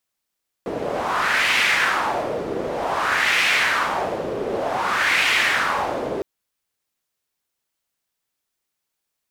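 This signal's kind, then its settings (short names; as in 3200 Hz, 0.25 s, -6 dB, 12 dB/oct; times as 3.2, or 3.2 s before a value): wind-like swept noise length 5.56 s, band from 430 Hz, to 2300 Hz, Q 2.5, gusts 3, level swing 8 dB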